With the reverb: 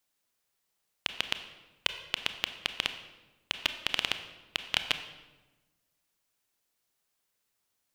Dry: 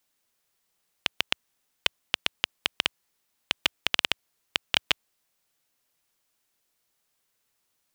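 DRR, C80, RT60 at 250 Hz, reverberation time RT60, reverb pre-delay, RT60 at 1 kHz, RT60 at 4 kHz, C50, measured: 8.5 dB, 11.5 dB, 1.5 s, 1.2 s, 25 ms, 1.1 s, 0.85 s, 10.0 dB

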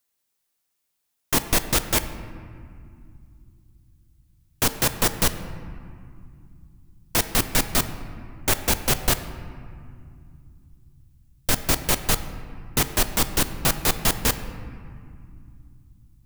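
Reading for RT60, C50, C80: 2.4 s, 11.5 dB, 12.0 dB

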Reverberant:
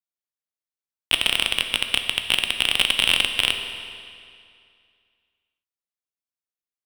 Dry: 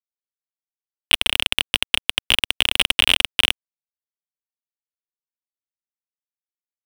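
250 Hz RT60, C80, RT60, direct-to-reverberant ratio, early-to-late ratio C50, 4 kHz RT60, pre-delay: 2.3 s, 8.0 dB, 2.3 s, 5.5 dB, 7.0 dB, 2.1 s, 12 ms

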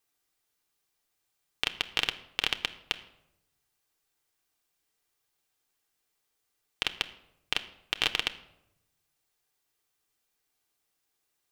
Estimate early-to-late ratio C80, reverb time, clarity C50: 17.5 dB, 0.85 s, 15.0 dB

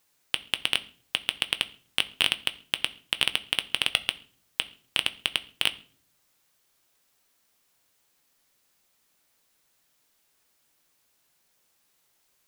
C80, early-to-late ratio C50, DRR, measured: 22.5 dB, 19.5 dB, 11.0 dB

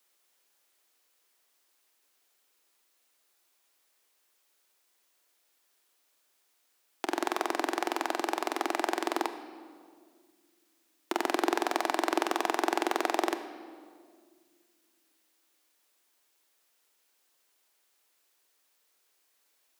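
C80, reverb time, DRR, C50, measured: 11.0 dB, 1.9 s, 9.0 dB, 10.0 dB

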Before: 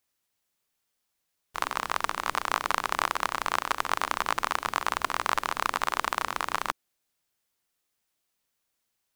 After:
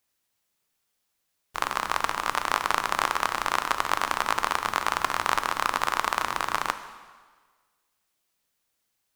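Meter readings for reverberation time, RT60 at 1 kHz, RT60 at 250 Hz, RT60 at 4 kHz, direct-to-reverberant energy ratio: 1.5 s, 1.5 s, 1.4 s, 1.4 s, 9.5 dB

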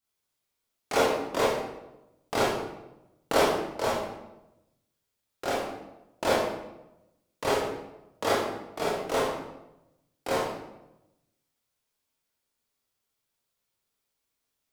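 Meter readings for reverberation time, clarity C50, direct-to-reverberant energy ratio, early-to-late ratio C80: 0.95 s, 0.0 dB, −7.5 dB, 4.0 dB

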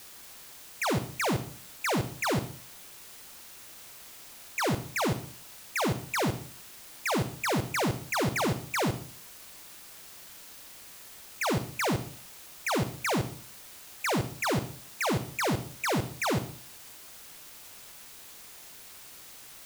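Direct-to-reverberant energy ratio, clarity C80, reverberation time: 9.5 dB, 15.0 dB, 0.50 s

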